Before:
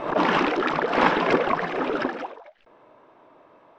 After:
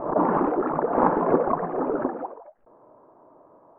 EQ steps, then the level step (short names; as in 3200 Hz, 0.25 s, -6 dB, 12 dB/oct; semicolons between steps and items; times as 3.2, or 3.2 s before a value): LPF 1100 Hz 24 dB/oct; +1.0 dB